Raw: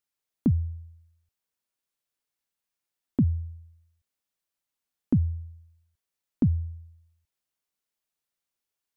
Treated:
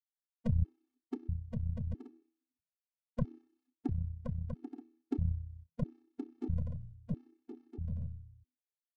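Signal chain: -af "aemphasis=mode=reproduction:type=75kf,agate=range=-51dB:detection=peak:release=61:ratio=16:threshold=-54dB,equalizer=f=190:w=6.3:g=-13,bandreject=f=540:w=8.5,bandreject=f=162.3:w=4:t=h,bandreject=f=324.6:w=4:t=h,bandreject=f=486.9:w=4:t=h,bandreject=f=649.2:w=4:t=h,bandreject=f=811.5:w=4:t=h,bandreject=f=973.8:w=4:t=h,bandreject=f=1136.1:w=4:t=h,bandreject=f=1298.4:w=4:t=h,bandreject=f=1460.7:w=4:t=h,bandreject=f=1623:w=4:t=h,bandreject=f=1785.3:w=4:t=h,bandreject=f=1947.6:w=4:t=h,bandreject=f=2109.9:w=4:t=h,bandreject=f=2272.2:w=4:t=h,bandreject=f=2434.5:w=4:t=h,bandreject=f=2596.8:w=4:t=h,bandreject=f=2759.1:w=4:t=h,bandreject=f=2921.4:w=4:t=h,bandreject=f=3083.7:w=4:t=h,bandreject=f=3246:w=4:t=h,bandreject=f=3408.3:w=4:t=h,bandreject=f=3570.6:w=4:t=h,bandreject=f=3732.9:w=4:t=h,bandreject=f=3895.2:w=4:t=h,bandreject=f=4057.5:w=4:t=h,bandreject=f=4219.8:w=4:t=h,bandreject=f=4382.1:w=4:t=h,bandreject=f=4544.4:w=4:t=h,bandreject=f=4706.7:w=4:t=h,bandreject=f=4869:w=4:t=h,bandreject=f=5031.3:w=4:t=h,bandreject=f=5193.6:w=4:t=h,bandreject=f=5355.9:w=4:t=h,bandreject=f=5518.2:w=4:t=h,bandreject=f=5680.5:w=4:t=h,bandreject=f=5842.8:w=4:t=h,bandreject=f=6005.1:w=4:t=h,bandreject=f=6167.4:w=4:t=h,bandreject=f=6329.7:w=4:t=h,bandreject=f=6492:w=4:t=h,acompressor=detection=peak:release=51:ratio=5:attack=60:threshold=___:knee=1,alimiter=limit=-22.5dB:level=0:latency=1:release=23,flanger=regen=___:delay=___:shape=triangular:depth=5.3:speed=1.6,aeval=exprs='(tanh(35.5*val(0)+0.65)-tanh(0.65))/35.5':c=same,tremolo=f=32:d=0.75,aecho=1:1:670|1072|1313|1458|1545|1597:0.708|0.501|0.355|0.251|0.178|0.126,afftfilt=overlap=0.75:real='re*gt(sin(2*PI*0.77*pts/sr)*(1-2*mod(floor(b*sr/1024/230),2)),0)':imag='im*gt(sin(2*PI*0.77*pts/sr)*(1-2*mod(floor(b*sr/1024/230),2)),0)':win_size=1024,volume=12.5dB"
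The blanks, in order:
-29dB, 30, 2.6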